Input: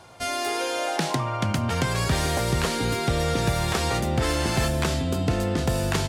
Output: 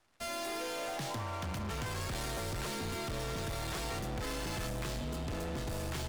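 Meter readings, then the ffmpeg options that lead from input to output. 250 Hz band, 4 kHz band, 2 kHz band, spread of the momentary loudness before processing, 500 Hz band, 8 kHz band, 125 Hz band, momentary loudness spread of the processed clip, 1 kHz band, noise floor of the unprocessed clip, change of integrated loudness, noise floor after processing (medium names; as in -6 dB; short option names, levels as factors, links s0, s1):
-14.0 dB, -12.0 dB, -12.5 dB, 2 LU, -13.0 dB, -11.5 dB, -14.5 dB, 1 LU, -13.0 dB, -29 dBFS, -13.0 dB, -39 dBFS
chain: -af "afreqshift=-23,volume=25.1,asoftclip=hard,volume=0.0398,aeval=exprs='0.0422*(cos(1*acos(clip(val(0)/0.0422,-1,1)))-cos(1*PI/2))+0.0075*(cos(3*acos(clip(val(0)/0.0422,-1,1)))-cos(3*PI/2))+0.00266*(cos(6*acos(clip(val(0)/0.0422,-1,1)))-cos(6*PI/2))+0.00376*(cos(7*acos(clip(val(0)/0.0422,-1,1)))-cos(7*PI/2))':c=same,volume=0.422"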